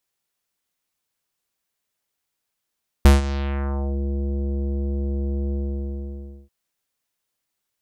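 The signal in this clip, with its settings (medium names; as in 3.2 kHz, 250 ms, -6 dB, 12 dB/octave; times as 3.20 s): synth note square C#2 24 dB/octave, low-pass 470 Hz, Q 1.2, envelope 5 oct, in 0.92 s, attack 1.1 ms, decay 0.16 s, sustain -16 dB, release 0.97 s, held 2.47 s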